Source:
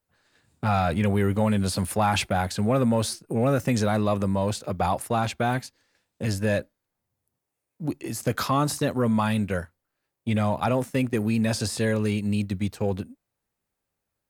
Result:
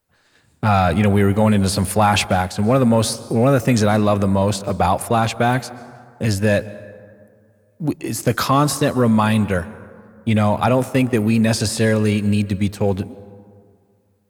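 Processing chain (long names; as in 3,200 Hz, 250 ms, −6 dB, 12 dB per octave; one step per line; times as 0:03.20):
dense smooth reverb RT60 2.2 s, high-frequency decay 0.4×, pre-delay 115 ms, DRR 17 dB
0:02.35–0:02.90: expander for the loud parts 1.5 to 1, over −31 dBFS
level +7.5 dB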